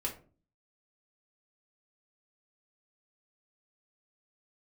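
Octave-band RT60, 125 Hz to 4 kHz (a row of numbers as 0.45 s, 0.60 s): 0.65 s, 0.60 s, 0.45 s, 0.35 s, 0.30 s, 0.20 s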